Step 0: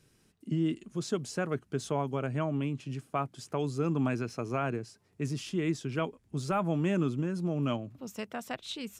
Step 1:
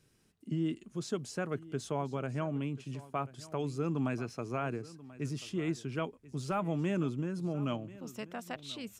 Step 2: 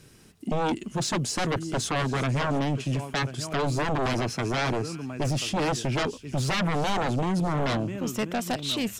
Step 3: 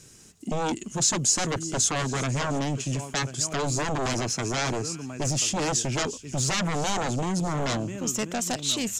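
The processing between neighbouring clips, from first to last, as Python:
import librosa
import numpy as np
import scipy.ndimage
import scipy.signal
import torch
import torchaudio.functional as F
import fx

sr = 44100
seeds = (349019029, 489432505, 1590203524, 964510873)

y1 = x + 10.0 ** (-18.5 / 20.0) * np.pad(x, (int(1036 * sr / 1000.0), 0))[:len(x)]
y1 = F.gain(torch.from_numpy(y1), -3.5).numpy()
y2 = fx.echo_wet_highpass(y1, sr, ms=354, feedback_pct=47, hz=3100.0, wet_db=-14.0)
y2 = fx.fold_sine(y2, sr, drive_db=12, ceiling_db=-22.0)
y3 = fx.peak_eq(y2, sr, hz=6900.0, db=15.0, octaves=0.71)
y3 = fx.quant_float(y3, sr, bits=8)
y3 = F.gain(torch.from_numpy(y3), -1.5).numpy()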